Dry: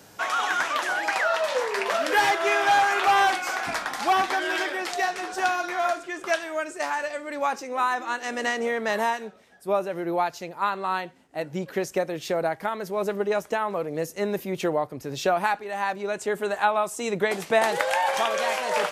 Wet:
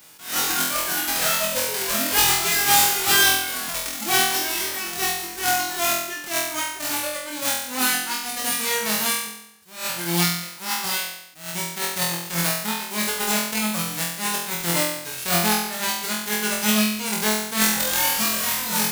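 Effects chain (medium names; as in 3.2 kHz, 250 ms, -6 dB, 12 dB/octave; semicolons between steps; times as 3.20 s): formants flattened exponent 0.1; reverb removal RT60 1.4 s; flutter echo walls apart 4 m, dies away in 0.78 s; attacks held to a fixed rise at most 130 dB/s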